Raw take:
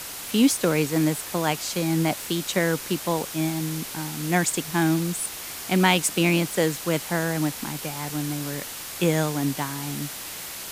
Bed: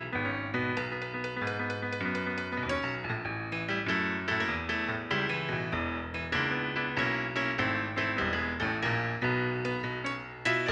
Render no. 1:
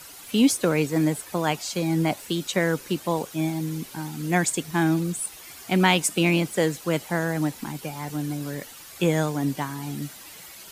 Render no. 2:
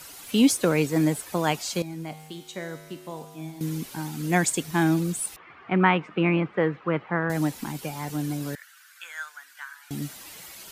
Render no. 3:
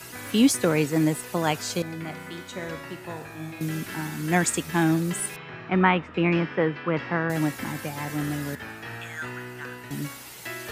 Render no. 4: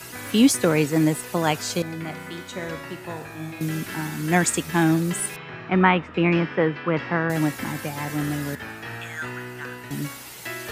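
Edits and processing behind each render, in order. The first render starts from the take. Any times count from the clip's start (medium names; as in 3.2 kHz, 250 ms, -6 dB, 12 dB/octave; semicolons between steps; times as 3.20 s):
noise reduction 11 dB, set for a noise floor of -36 dBFS
1.82–3.61 s: feedback comb 52 Hz, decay 1.6 s, harmonics odd, mix 80%; 5.36–7.30 s: cabinet simulation 110–2300 Hz, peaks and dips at 250 Hz -5 dB, 630 Hz -4 dB, 1.2 kHz +7 dB; 8.55–9.91 s: ladder high-pass 1.4 kHz, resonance 75%
add bed -8 dB
trim +2.5 dB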